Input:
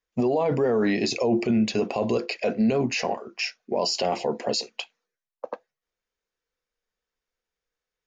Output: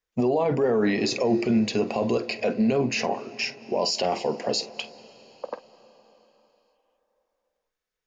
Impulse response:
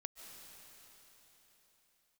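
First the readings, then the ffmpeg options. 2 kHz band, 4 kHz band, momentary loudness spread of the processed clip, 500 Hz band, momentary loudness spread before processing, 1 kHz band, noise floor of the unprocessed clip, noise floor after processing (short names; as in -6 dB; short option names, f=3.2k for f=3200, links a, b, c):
0.0 dB, 0.0 dB, 16 LU, 0.0 dB, 16 LU, 0.0 dB, under -85 dBFS, under -85 dBFS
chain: -filter_complex "[0:a]asplit=2[a][b];[1:a]atrim=start_sample=2205,highshelf=f=5.3k:g=-9,adelay=48[c];[b][c]afir=irnorm=-1:irlink=0,volume=-8dB[d];[a][d]amix=inputs=2:normalize=0"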